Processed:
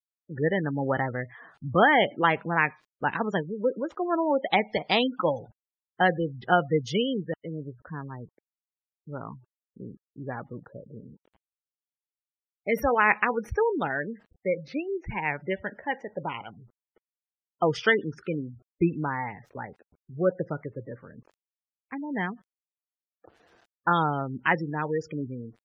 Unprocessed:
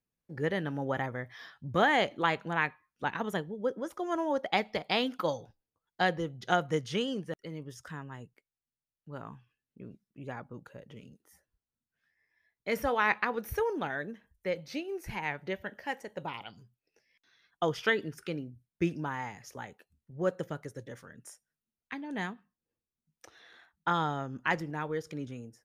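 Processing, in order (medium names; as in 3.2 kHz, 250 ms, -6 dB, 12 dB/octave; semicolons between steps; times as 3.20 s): level-controlled noise filter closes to 620 Hz, open at -28.5 dBFS; bit crusher 11-bit; spectral gate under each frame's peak -20 dB strong; trim +6 dB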